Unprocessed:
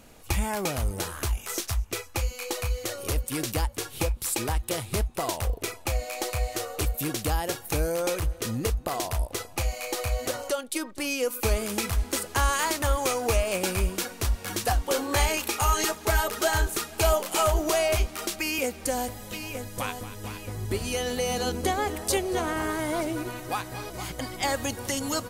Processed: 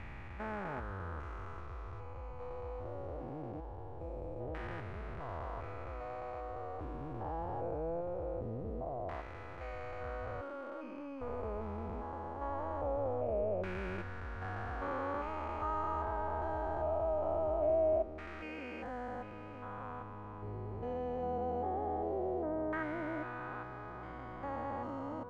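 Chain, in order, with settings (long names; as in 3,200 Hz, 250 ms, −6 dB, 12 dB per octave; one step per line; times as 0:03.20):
spectrum averaged block by block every 400 ms
auto-filter low-pass saw down 0.22 Hz 590–1,800 Hz
level −9 dB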